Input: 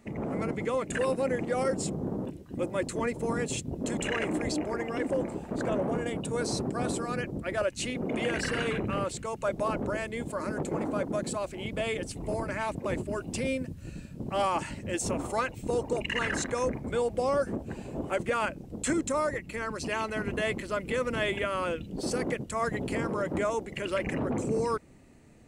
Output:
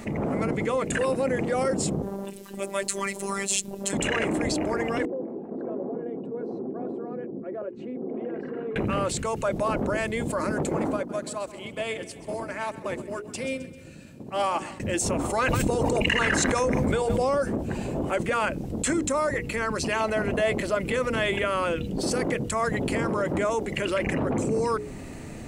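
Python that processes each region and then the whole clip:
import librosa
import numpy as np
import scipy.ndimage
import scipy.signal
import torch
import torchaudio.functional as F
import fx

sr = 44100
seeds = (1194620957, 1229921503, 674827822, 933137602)

y = fx.chain(x, sr, fx.tilt_eq(slope=3.0),
    fx.robotise(hz=197.0),
    fx.upward_expand(threshold_db=-51.0, expansion=1.5), at=(2.02, 3.93))
y = fx.chain(y, sr, fx.ladder_bandpass(hz=360.0, resonance_pct=40),
    fx.notch_comb(f0_hz=300.0), at=(5.05, 8.76))
y = fx.chain(y, sr, fx.highpass(hz=220.0, slope=6),
    fx.echo_feedback(ms=131, feedback_pct=53, wet_db=-13.5),
    fx.upward_expand(threshold_db=-42.0, expansion=2.5), at=(10.96, 14.8))
y = fx.chain(y, sr, fx.echo_single(ms=141, db=-21.0),
    fx.env_flatten(amount_pct=100), at=(15.39, 17.35))
y = fx.chain(y, sr, fx.peak_eq(hz=640.0, db=8.0, octaves=0.65),
    fx.clip_hard(threshold_db=-16.0), at=(20.0, 20.75))
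y = fx.hum_notches(y, sr, base_hz=60, count=8)
y = fx.env_flatten(y, sr, amount_pct=50)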